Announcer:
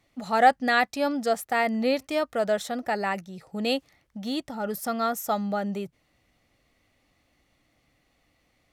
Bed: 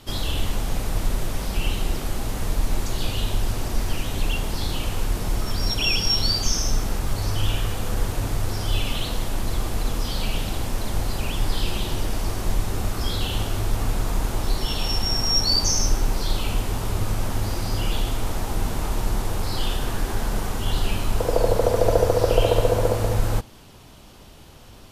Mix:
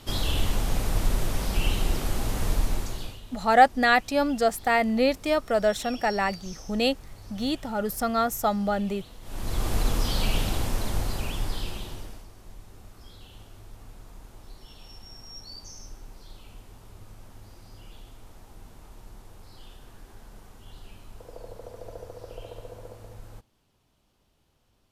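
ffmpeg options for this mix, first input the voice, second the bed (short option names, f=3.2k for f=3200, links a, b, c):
-filter_complex "[0:a]adelay=3150,volume=2dB[a];[1:a]volume=19.5dB,afade=t=out:st=2.52:d=0.68:silence=0.105925,afade=t=in:st=9.22:d=0.52:silence=0.0944061,afade=t=out:st=10.41:d=1.86:silence=0.0707946[b];[a][b]amix=inputs=2:normalize=0"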